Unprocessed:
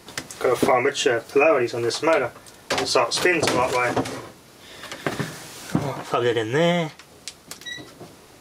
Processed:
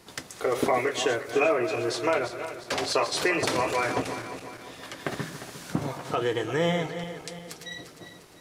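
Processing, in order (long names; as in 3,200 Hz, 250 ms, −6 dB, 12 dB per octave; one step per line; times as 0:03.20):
feedback delay that plays each chunk backwards 176 ms, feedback 68%, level −10 dB
level −6 dB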